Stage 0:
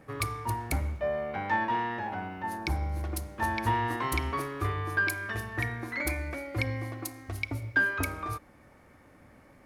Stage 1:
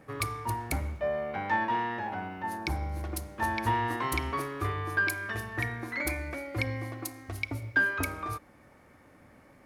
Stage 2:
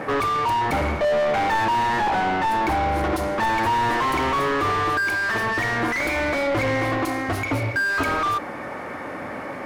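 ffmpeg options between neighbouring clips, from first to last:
-af "lowshelf=f=60:g=-6.5"
-filter_complex "[0:a]asplit=2[s0][s1];[s1]highpass=f=720:p=1,volume=70.8,asoftclip=type=tanh:threshold=0.2[s2];[s0][s2]amix=inputs=2:normalize=0,lowpass=f=1200:p=1,volume=0.501,volume=1.19"

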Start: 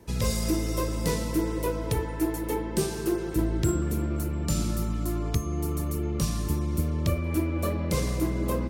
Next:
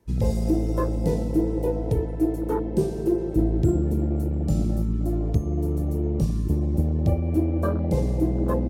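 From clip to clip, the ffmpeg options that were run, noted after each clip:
-af "afwtdn=0.0355,volume=1.68"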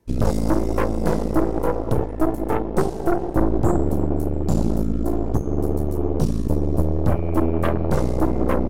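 -af "aeval=exprs='0.335*(cos(1*acos(clip(val(0)/0.335,-1,1)))-cos(1*PI/2))+0.106*(cos(6*acos(clip(val(0)/0.335,-1,1)))-cos(6*PI/2))':c=same"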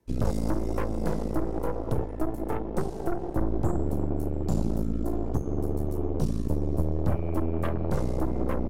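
-filter_complex "[0:a]acrossover=split=180[s0][s1];[s1]acompressor=threshold=0.0891:ratio=6[s2];[s0][s2]amix=inputs=2:normalize=0,volume=0.501"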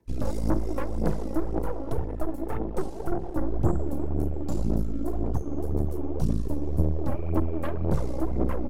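-af "aphaser=in_gain=1:out_gain=1:delay=3.7:decay=0.54:speed=1.9:type=sinusoidal,volume=0.708"

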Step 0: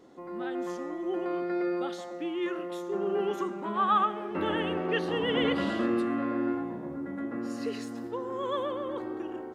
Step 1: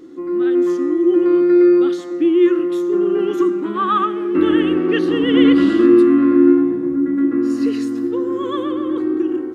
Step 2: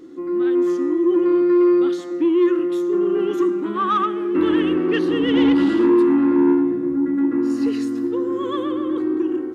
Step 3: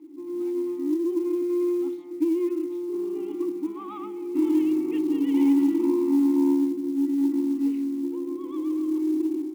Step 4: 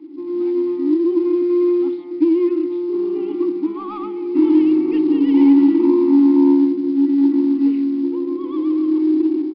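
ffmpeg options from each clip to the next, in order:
-af "superequalizer=6b=3.98:8b=0.316:9b=0.355,volume=2.37"
-af "asoftclip=type=tanh:threshold=0.398,volume=0.841"
-filter_complex "[0:a]asplit=3[s0][s1][s2];[s0]bandpass=f=300:t=q:w=8,volume=1[s3];[s1]bandpass=f=870:t=q:w=8,volume=0.501[s4];[s2]bandpass=f=2240:t=q:w=8,volume=0.355[s5];[s3][s4][s5]amix=inputs=3:normalize=0,bandreject=f=52.12:t=h:w=4,bandreject=f=104.24:t=h:w=4,bandreject=f=156.36:t=h:w=4,bandreject=f=208.48:t=h:w=4,bandreject=f=260.6:t=h:w=4,acrusher=bits=8:mode=log:mix=0:aa=0.000001"
-filter_complex "[0:a]acrossover=split=160|1500[s0][s1][s2];[s2]aeval=exprs='clip(val(0),-1,0.00211)':c=same[s3];[s0][s1][s3]amix=inputs=3:normalize=0,aresample=11025,aresample=44100,volume=2.66"

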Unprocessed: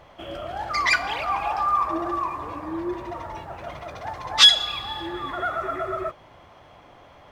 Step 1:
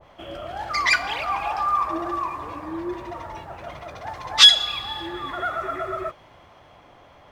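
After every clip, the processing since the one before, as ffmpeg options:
-af "adynamicequalizer=threshold=0.0178:dfrequency=1500:dqfactor=0.7:tfrequency=1500:tqfactor=0.7:attack=5:release=100:ratio=0.375:range=1.5:mode=boostabove:tftype=highshelf,volume=0.891"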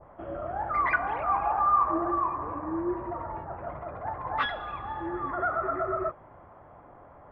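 -af "lowpass=f=1500:w=0.5412,lowpass=f=1500:w=1.3066"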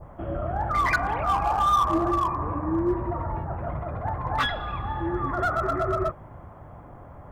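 -filter_complex "[0:a]asplit=2[s0][s1];[s1]asoftclip=type=hard:threshold=0.0668,volume=0.668[s2];[s0][s2]amix=inputs=2:normalize=0,bass=f=250:g=11,treble=f=4000:g=11,volume=0.841"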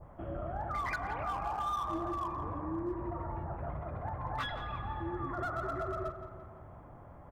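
-filter_complex "[0:a]acompressor=threshold=0.0447:ratio=2.5,asplit=2[s0][s1];[s1]adelay=170,lowpass=f=3400:p=1,volume=0.335,asplit=2[s2][s3];[s3]adelay=170,lowpass=f=3400:p=1,volume=0.54,asplit=2[s4][s5];[s5]adelay=170,lowpass=f=3400:p=1,volume=0.54,asplit=2[s6][s7];[s7]adelay=170,lowpass=f=3400:p=1,volume=0.54,asplit=2[s8][s9];[s9]adelay=170,lowpass=f=3400:p=1,volume=0.54,asplit=2[s10][s11];[s11]adelay=170,lowpass=f=3400:p=1,volume=0.54[s12];[s0][s2][s4][s6][s8][s10][s12]amix=inputs=7:normalize=0,volume=0.398"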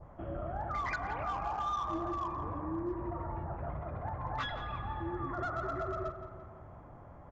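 -af "aresample=16000,aresample=44100"

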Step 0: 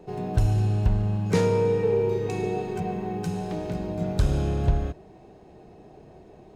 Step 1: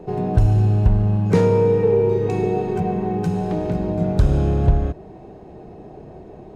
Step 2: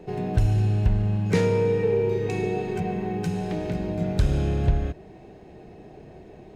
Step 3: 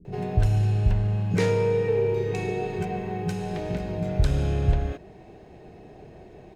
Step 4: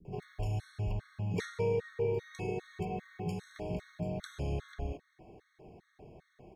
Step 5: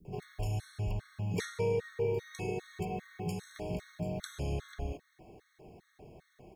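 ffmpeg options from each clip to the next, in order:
-filter_complex "[0:a]highshelf=f=2000:g=-10.5,asplit=2[s0][s1];[s1]acompressor=threshold=0.0282:ratio=6,volume=0.75[s2];[s0][s2]amix=inputs=2:normalize=0,volume=1.78"
-af "highshelf=f=1500:t=q:w=1.5:g=6.5,volume=0.531"
-filter_complex "[0:a]acrossover=split=250[s0][s1];[s1]adelay=50[s2];[s0][s2]amix=inputs=2:normalize=0"
-filter_complex "[0:a]acrossover=split=330|2600[s0][s1][s2];[s0]alimiter=limit=0.0841:level=0:latency=1[s3];[s3][s1][s2]amix=inputs=3:normalize=0,afftfilt=real='re*gt(sin(2*PI*2.5*pts/sr)*(1-2*mod(floor(b*sr/1024/1100),2)),0)':imag='im*gt(sin(2*PI*2.5*pts/sr)*(1-2*mod(floor(b*sr/1024/1100),2)),0)':win_size=1024:overlap=0.75,volume=0.447"
-af "crystalizer=i=1.5:c=0"

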